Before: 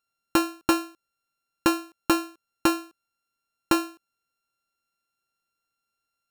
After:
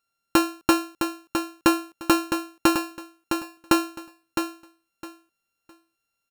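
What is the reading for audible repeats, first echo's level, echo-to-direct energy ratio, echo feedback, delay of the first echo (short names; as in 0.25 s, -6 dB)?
3, -7.0 dB, -7.0 dB, 21%, 0.66 s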